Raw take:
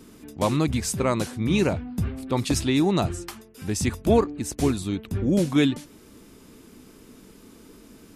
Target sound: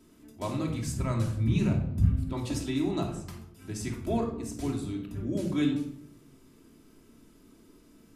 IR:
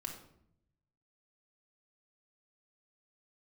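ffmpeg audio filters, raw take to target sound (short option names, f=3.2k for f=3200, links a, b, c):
-filter_complex "[1:a]atrim=start_sample=2205[a];[0:a][a]afir=irnorm=-1:irlink=0,asplit=3[b][c][d];[b]afade=t=out:st=0.86:d=0.02[e];[c]asubboost=boost=10:cutoff=160,afade=t=in:st=0.86:d=0.02,afade=t=out:st=2.32:d=0.02[f];[d]afade=t=in:st=2.32:d=0.02[g];[e][f][g]amix=inputs=3:normalize=0,volume=-8.5dB"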